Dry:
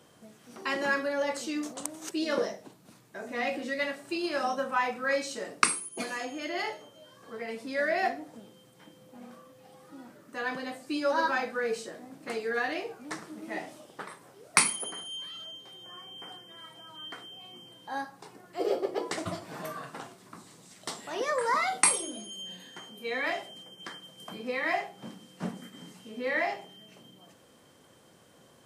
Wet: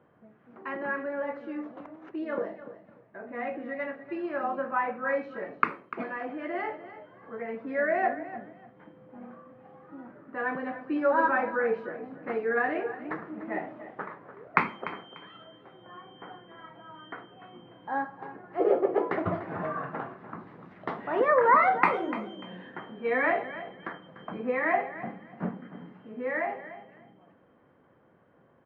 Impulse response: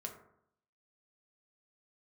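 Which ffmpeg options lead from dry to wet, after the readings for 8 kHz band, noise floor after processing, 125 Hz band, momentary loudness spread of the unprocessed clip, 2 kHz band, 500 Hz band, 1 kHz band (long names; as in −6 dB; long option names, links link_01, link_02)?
below −40 dB, −62 dBFS, +4.5 dB, 20 LU, +1.0 dB, +3.5 dB, +4.5 dB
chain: -filter_complex "[0:a]lowpass=frequency=1900:width=0.5412,lowpass=frequency=1900:width=1.3066,dynaudnorm=framelen=760:gausssize=13:maxgain=13dB,asplit=2[link_01][link_02];[link_02]aecho=0:1:295|590:0.2|0.0419[link_03];[link_01][link_03]amix=inputs=2:normalize=0,volume=-3dB"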